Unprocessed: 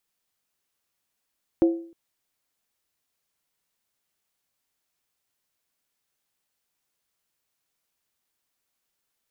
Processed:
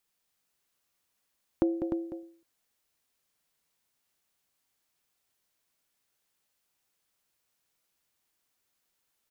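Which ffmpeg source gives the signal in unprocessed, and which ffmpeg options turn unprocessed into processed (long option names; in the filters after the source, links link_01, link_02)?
-f lavfi -i "aevalsrc='0.237*pow(10,-3*t/0.49)*sin(2*PI*334*t)+0.0668*pow(10,-3*t/0.388)*sin(2*PI*532.4*t)+0.0188*pow(10,-3*t/0.335)*sin(2*PI*713.4*t)+0.00531*pow(10,-3*t/0.323)*sin(2*PI*766.9*t)+0.0015*pow(10,-3*t/0.301)*sin(2*PI*886.1*t)':duration=0.31:sample_rate=44100"
-filter_complex "[0:a]asplit=2[link_01][link_02];[link_02]aecho=0:1:199:0.299[link_03];[link_01][link_03]amix=inputs=2:normalize=0,acompressor=threshold=-23dB:ratio=6,asplit=2[link_04][link_05];[link_05]aecho=0:1:301:0.422[link_06];[link_04][link_06]amix=inputs=2:normalize=0"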